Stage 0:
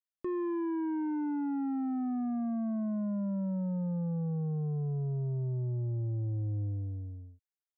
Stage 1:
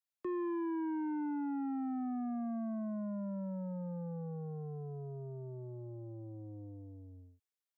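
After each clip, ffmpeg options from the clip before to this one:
-filter_complex "[0:a]lowshelf=f=180:g=-11,acrossover=split=150|290|750[s0][s1][s2][s3];[s0]alimiter=level_in=21.1:limit=0.0631:level=0:latency=1,volume=0.0473[s4];[s4][s1][s2][s3]amix=inputs=4:normalize=0,volume=0.891"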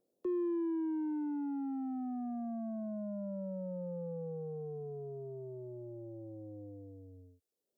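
-filter_complex "[0:a]equalizer=f=125:t=o:w=1:g=-7,equalizer=f=250:t=o:w=1:g=-3,equalizer=f=500:t=o:w=1:g=8,equalizer=f=1000:t=o:w=1:g=-9,equalizer=f=2000:t=o:w=1:g=-12,acrossover=split=150|540|860[s0][s1][s2][s3];[s1]acompressor=mode=upward:threshold=0.001:ratio=2.5[s4];[s0][s4][s2][s3]amix=inputs=4:normalize=0,volume=1.26"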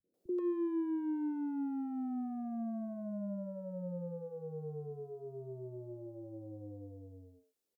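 -filter_complex "[0:a]acrossover=split=150|450[s0][s1][s2];[s1]adelay=40[s3];[s2]adelay=140[s4];[s0][s3][s4]amix=inputs=3:normalize=0,adynamicequalizer=threshold=0.00251:dfrequency=770:dqfactor=1:tfrequency=770:tqfactor=1:attack=5:release=100:ratio=0.375:range=1.5:mode=cutabove:tftype=bell,volume=1.33"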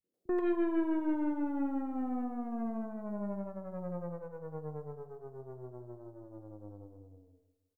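-filter_complex "[0:a]aeval=exprs='0.0447*(cos(1*acos(clip(val(0)/0.0447,-1,1)))-cos(1*PI/2))+0.00501*(cos(4*acos(clip(val(0)/0.0447,-1,1)))-cos(4*PI/2))+0.00398*(cos(7*acos(clip(val(0)/0.0447,-1,1)))-cos(7*PI/2))':c=same,asplit=2[s0][s1];[s1]adelay=157,lowpass=f=2000:p=1,volume=0.224,asplit=2[s2][s3];[s3]adelay=157,lowpass=f=2000:p=1,volume=0.46,asplit=2[s4][s5];[s5]adelay=157,lowpass=f=2000:p=1,volume=0.46,asplit=2[s6][s7];[s7]adelay=157,lowpass=f=2000:p=1,volume=0.46,asplit=2[s8][s9];[s9]adelay=157,lowpass=f=2000:p=1,volume=0.46[s10];[s0][s2][s4][s6][s8][s10]amix=inputs=6:normalize=0,volume=1.41"

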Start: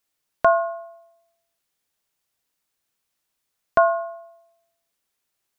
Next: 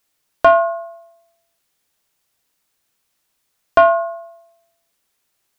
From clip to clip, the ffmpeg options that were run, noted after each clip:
-af "acontrast=67,volume=1.12"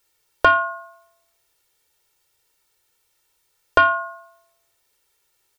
-af "aecho=1:1:2.2:0.82"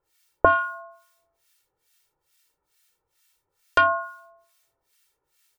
-filter_complex "[0:a]acrossover=split=1200[s0][s1];[s0]aeval=exprs='val(0)*(1-1/2+1/2*cos(2*PI*2.3*n/s))':c=same[s2];[s1]aeval=exprs='val(0)*(1-1/2-1/2*cos(2*PI*2.3*n/s))':c=same[s3];[s2][s3]amix=inputs=2:normalize=0,volume=1.33"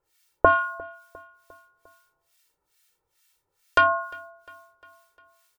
-af "aecho=1:1:352|704|1056|1408:0.0631|0.0347|0.0191|0.0105"

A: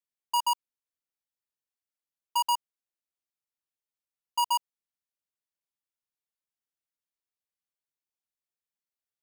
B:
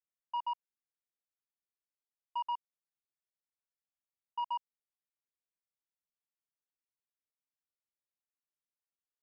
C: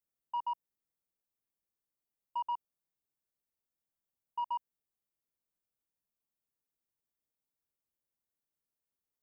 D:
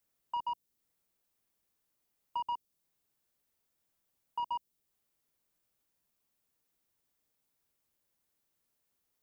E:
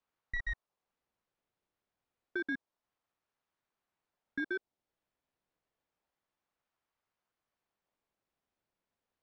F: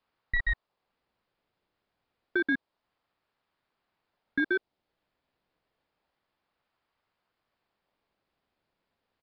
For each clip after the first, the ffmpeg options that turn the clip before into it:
-af "lowpass=f=2400:w=0.5412,lowpass=f=2400:w=1.3066,volume=0.376"
-af "equalizer=f=3100:w=0.31:g=-13.5,volume=2.37"
-filter_complex "[0:a]acrossover=split=490|3000[s0][s1][s2];[s1]acompressor=threshold=0.00158:ratio=2[s3];[s0][s3][s2]amix=inputs=3:normalize=0,volume=3.16"
-af "adynamicsmooth=sensitivity=4:basefreq=3300,aeval=exprs='val(0)*sin(2*PI*720*n/s+720*0.45/0.29*sin(2*PI*0.29*n/s))':c=same,volume=1.41"
-af "aresample=11025,aresample=44100,volume=2.66"

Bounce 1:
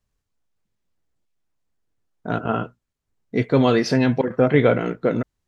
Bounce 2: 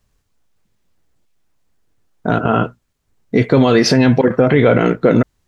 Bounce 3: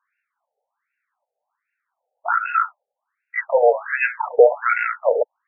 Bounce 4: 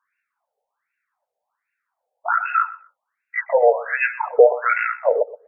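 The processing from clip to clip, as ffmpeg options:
-af "alimiter=level_in=4.47:limit=0.891:release=50:level=0:latency=1,volume=0.891"
-af "afreqshift=-28,afftfilt=real='re*between(b*sr/1024,600*pow(2000/600,0.5+0.5*sin(2*PI*1.3*pts/sr))/1.41,600*pow(2000/600,0.5+0.5*sin(2*PI*1.3*pts/sr))*1.41)':imag='im*between(b*sr/1024,600*pow(2000/600,0.5+0.5*sin(2*PI*1.3*pts/sr))/1.41,600*pow(2000/600,0.5+0.5*sin(2*PI*1.3*pts/sr))*1.41)':win_size=1024:overlap=0.75,volume=1.68"
-af "aecho=1:1:123|246:0.133|0.0227"

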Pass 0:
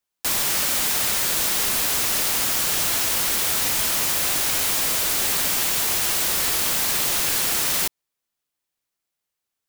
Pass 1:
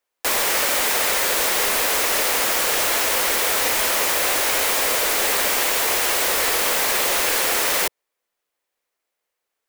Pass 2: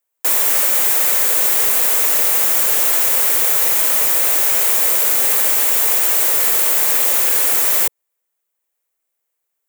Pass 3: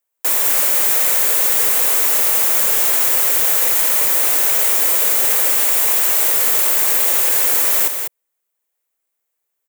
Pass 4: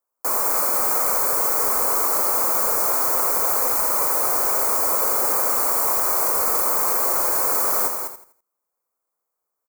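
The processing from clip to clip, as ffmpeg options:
-af "equalizer=f=125:t=o:w=1:g=-12,equalizer=f=500:t=o:w=1:g=11,equalizer=f=1000:t=o:w=1:g=4,equalizer=f=2000:t=o:w=1:g=6"
-af "aexciter=amount=3.7:drive=2.1:freq=6800,volume=0.668"
-af "aecho=1:1:198:0.473,volume=0.891"
-af "asuperstop=centerf=3200:order=12:qfactor=1.9,highshelf=f=1500:t=q:w=3:g=-6.5,aecho=1:1:83|166|249|332:0.355|0.114|0.0363|0.0116"

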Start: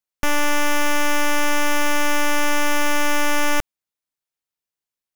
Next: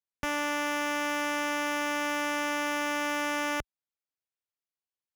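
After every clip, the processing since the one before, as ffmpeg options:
-af "highpass=46,highshelf=f=7500:g=-9.5,volume=0.398"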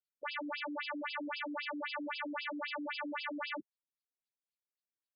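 -af "aexciter=amount=2.8:drive=8.8:freq=4500,afftfilt=real='re*between(b*sr/1024,240*pow(3600/240,0.5+0.5*sin(2*PI*3.8*pts/sr))/1.41,240*pow(3600/240,0.5+0.5*sin(2*PI*3.8*pts/sr))*1.41)':imag='im*between(b*sr/1024,240*pow(3600/240,0.5+0.5*sin(2*PI*3.8*pts/sr))/1.41,240*pow(3600/240,0.5+0.5*sin(2*PI*3.8*pts/sr))*1.41)':win_size=1024:overlap=0.75,volume=0.794"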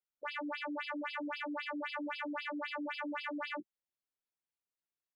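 -filter_complex "[0:a]asplit=2[s0][s1];[s1]adynamicsmooth=sensitivity=4.5:basefreq=4100,volume=0.891[s2];[s0][s2]amix=inputs=2:normalize=0,asplit=2[s3][s4];[s4]adelay=17,volume=0.355[s5];[s3][s5]amix=inputs=2:normalize=0,volume=0.473"

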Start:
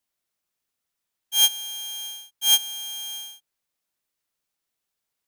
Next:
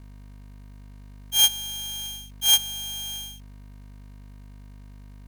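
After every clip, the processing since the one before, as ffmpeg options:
-af "bandreject=f=50:t=h:w=6,bandreject=f=100:t=h:w=6,bandreject=f=150:t=h:w=6,aeval=exprs='val(0)+0.00631*(sin(2*PI*50*n/s)+sin(2*PI*2*50*n/s)/2+sin(2*PI*3*50*n/s)/3+sin(2*PI*4*50*n/s)/4+sin(2*PI*5*50*n/s)/5)':c=same,acrusher=bits=3:mode=log:mix=0:aa=0.000001"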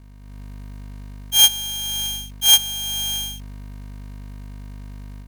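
-af "dynaudnorm=f=200:g=3:m=2.82"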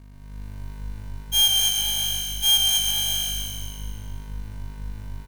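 -filter_complex "[0:a]asplit=2[s0][s1];[s1]aecho=0:1:222|444|666|888:0.398|0.155|0.0606|0.0236[s2];[s0][s2]amix=inputs=2:normalize=0,asoftclip=type=tanh:threshold=0.224,asplit=2[s3][s4];[s4]asplit=7[s5][s6][s7][s8][s9][s10][s11];[s5]adelay=130,afreqshift=-52,volume=0.631[s12];[s6]adelay=260,afreqshift=-104,volume=0.324[s13];[s7]adelay=390,afreqshift=-156,volume=0.164[s14];[s8]adelay=520,afreqshift=-208,volume=0.0841[s15];[s9]adelay=650,afreqshift=-260,volume=0.0427[s16];[s10]adelay=780,afreqshift=-312,volume=0.0219[s17];[s11]adelay=910,afreqshift=-364,volume=0.0111[s18];[s12][s13][s14][s15][s16][s17][s18]amix=inputs=7:normalize=0[s19];[s3][s19]amix=inputs=2:normalize=0,volume=0.891"

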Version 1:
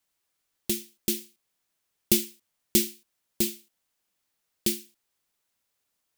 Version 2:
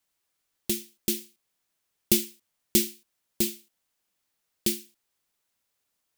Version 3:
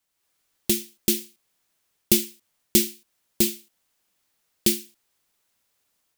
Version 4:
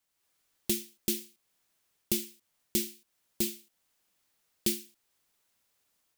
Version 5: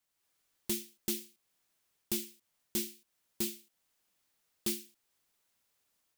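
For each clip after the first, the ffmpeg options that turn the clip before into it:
-af anull
-af "dynaudnorm=f=130:g=3:m=2"
-af "alimiter=limit=0.282:level=0:latency=1:release=487,volume=0.75"
-af "asoftclip=type=hard:threshold=0.0631,volume=0.75"

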